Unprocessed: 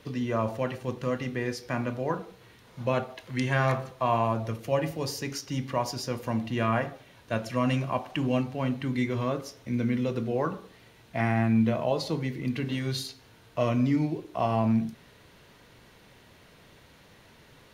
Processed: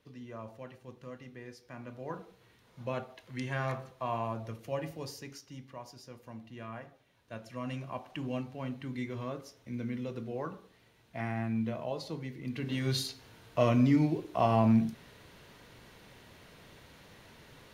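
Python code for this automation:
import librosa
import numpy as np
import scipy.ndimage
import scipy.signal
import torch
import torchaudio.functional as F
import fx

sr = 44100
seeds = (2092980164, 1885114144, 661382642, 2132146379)

y = fx.gain(x, sr, db=fx.line((1.74, -16.5), (2.19, -9.0), (5.0, -9.0), (5.72, -17.5), (6.84, -17.5), (8.13, -9.5), (12.41, -9.5), (12.91, 0.0)))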